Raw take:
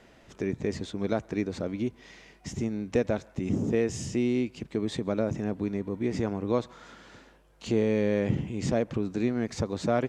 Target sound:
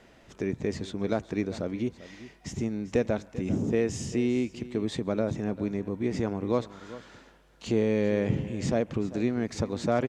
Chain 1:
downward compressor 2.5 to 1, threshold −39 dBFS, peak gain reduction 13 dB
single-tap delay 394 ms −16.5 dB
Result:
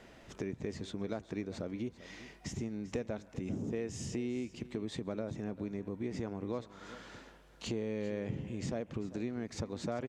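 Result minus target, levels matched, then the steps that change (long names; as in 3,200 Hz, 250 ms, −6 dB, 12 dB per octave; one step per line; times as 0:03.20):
downward compressor: peak gain reduction +13 dB
remove: downward compressor 2.5 to 1, threshold −39 dBFS, peak gain reduction 13 dB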